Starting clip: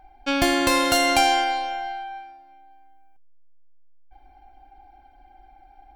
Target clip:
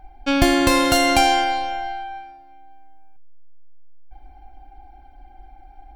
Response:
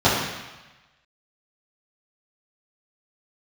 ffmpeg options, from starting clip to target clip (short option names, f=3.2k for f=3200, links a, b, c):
-af "lowshelf=f=240:g=9.5,volume=1.5dB"